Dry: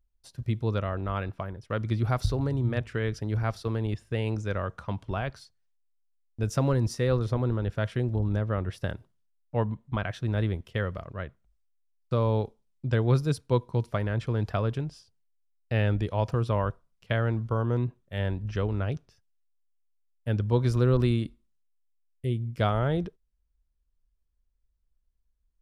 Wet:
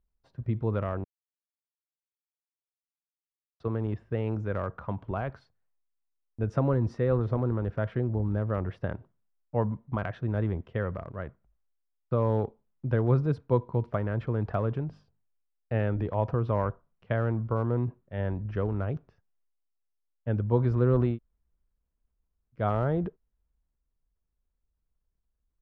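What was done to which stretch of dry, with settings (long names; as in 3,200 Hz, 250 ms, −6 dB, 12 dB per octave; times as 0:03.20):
0:01.04–0:03.60: silence
0:14.88–0:16.05: mains-hum notches 50/100/150/200/250/300/350 Hz
0:21.11–0:22.60: fill with room tone, crossfade 0.16 s
whole clip: low-pass filter 1,400 Hz 12 dB per octave; low-shelf EQ 65 Hz −8.5 dB; transient designer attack +1 dB, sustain +5 dB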